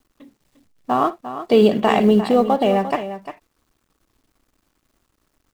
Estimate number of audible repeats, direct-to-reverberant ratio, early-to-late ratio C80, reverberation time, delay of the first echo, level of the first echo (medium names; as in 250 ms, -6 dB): 2, no reverb, no reverb, no reverb, 57 ms, -17.5 dB